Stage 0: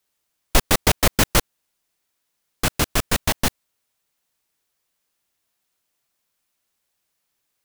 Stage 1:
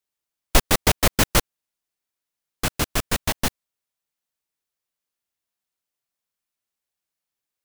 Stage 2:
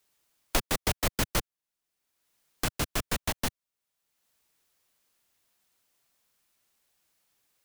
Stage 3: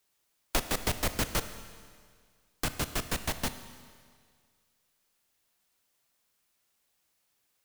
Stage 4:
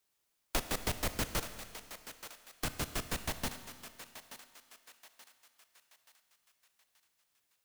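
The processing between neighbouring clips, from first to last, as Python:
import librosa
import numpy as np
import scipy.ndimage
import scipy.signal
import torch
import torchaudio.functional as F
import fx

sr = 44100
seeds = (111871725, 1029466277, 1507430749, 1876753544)

y1 = fx.upward_expand(x, sr, threshold_db=-35.0, expansion=1.5)
y1 = y1 * 10.0 ** (1.0 / 20.0)
y2 = fx.band_squash(y1, sr, depth_pct=70)
y2 = y2 * 10.0 ** (-8.5 / 20.0)
y3 = fx.rev_schroeder(y2, sr, rt60_s=1.9, comb_ms=25, drr_db=10.5)
y3 = y3 * 10.0 ** (-2.0 / 20.0)
y4 = fx.echo_thinned(y3, sr, ms=879, feedback_pct=46, hz=650.0, wet_db=-11)
y4 = y4 * 10.0 ** (-4.5 / 20.0)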